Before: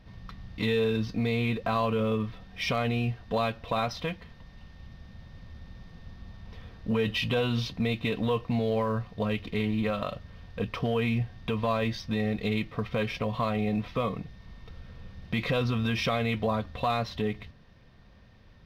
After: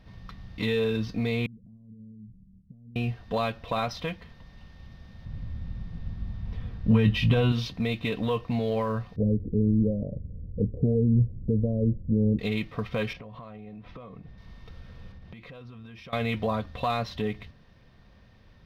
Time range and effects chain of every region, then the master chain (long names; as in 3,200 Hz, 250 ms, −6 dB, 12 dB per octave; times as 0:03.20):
0:01.46–0:02.96: downward compressor 8 to 1, threshold −35 dBFS + transistor ladder low-pass 230 Hz, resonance 45%
0:05.25–0:07.52: bass and treble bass +11 dB, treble −5 dB + double-tracking delay 19 ms −11.5 dB
0:09.16–0:12.39: Butterworth low-pass 530 Hz 48 dB per octave + low-shelf EQ 270 Hz +9 dB
0:13.13–0:14.38: low-pass filter 1,600 Hz 6 dB per octave + downward compressor 12 to 1, threshold −39 dBFS
0:15.12–0:16.13: downward compressor 12 to 1, threshold −41 dBFS + high-shelf EQ 3,700 Hz −9 dB
whole clip: no processing